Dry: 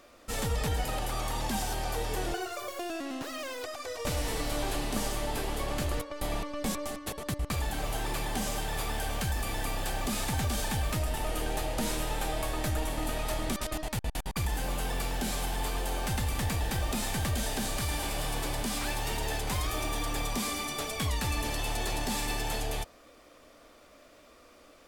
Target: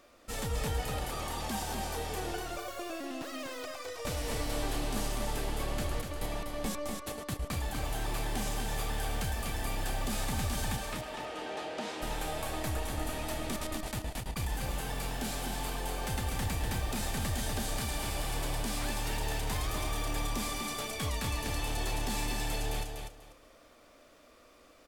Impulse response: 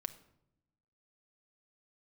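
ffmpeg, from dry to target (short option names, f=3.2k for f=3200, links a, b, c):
-filter_complex "[0:a]asplit=3[a][b][c];[a]afade=t=out:st=10.76:d=0.02[d];[b]highpass=280,lowpass=4.6k,afade=t=in:st=10.76:d=0.02,afade=t=out:st=12.01:d=0.02[e];[c]afade=t=in:st=12.01:d=0.02[f];[d][e][f]amix=inputs=3:normalize=0,asplit=2[g][h];[h]aecho=0:1:245|490|735:0.562|0.118|0.0248[i];[g][i]amix=inputs=2:normalize=0,volume=-4dB"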